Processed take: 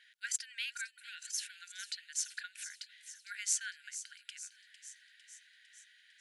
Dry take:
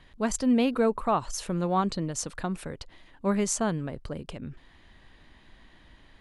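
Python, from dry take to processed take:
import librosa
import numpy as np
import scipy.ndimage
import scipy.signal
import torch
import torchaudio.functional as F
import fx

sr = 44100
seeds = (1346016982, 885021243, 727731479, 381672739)

y = fx.brickwall_highpass(x, sr, low_hz=1400.0)
y = fx.echo_wet_highpass(y, sr, ms=453, feedback_pct=63, hz=3400.0, wet_db=-11.0)
y = y * librosa.db_to_amplitude(-2.0)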